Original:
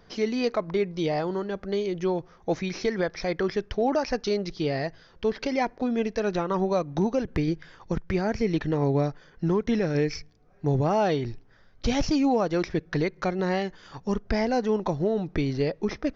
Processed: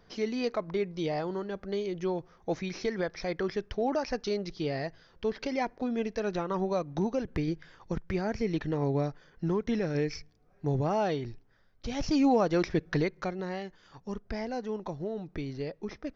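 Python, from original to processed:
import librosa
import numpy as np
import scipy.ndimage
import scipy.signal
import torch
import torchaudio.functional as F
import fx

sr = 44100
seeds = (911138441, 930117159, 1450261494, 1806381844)

y = fx.gain(x, sr, db=fx.line((11.01, -5.0), (11.89, -11.0), (12.2, -1.0), (12.93, -1.0), (13.49, -10.0)))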